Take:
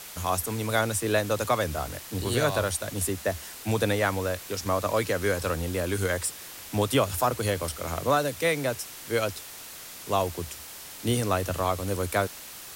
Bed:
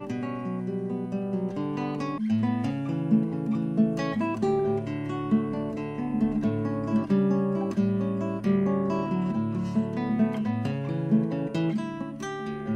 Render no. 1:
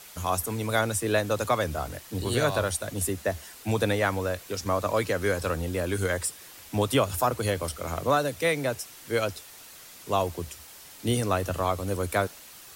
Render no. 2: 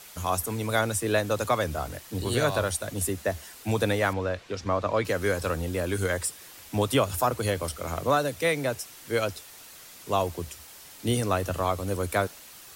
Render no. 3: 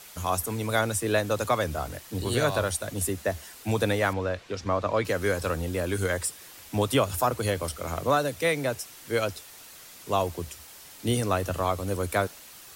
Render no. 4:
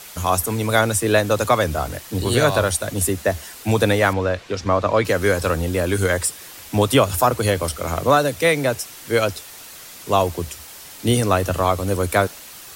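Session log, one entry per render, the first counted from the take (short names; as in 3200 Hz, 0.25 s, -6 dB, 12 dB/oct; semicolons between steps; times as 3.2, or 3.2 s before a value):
denoiser 6 dB, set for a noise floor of -43 dBFS
4.13–5.05 LPF 4100 Hz
nothing audible
gain +8 dB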